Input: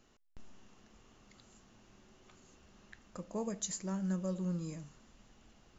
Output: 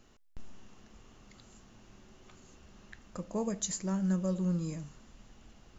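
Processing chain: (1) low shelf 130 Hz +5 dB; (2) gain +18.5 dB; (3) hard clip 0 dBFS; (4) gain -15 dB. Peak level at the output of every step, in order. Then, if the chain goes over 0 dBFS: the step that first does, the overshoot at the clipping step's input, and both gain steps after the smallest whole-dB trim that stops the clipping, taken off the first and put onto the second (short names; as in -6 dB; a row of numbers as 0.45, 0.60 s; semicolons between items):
-23.0, -4.5, -4.5, -19.5 dBFS; no overload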